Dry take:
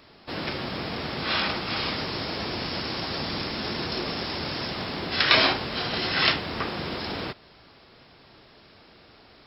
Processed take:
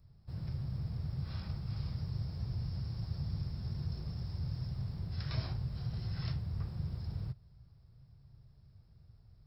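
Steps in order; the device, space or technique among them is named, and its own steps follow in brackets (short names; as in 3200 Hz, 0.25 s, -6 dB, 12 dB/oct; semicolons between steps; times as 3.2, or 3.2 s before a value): EQ curve 130 Hz 0 dB, 270 Hz -29 dB, 3100 Hz -28 dB, 7800 Hz +1 dB; through cloth (high shelf 2300 Hz -17.5 dB); gain +4.5 dB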